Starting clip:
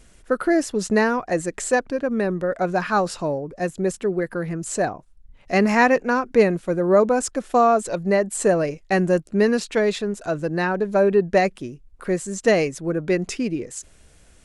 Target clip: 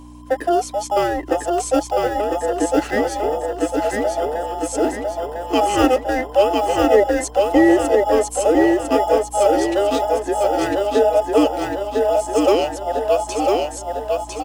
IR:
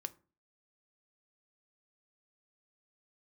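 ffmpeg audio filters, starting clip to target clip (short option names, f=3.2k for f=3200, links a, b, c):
-filter_complex "[0:a]afftfilt=real='real(if(between(b,1,1008),(2*floor((b-1)/48)+1)*48-b,b),0)':imag='imag(if(between(b,1,1008),(2*floor((b-1)/48)+1)*48-b,b),0)*if(between(b,1,1008),-1,1)':win_size=2048:overlap=0.75,aeval=exprs='val(0)+0.0224*(sin(2*PI*60*n/s)+sin(2*PI*2*60*n/s)/2+sin(2*PI*3*60*n/s)/3+sin(2*PI*4*60*n/s)/4+sin(2*PI*5*60*n/s)/5)':c=same,acrossover=split=300|1200|1700[a][b][c][d];[c]acrusher=samples=21:mix=1:aa=0.000001[e];[a][b][e][d]amix=inputs=4:normalize=0,lowshelf=f=230:t=q:w=3:g=-7,aecho=1:1:1002|2004|3006|4008|5010|6012:0.708|0.34|0.163|0.0783|0.0376|0.018"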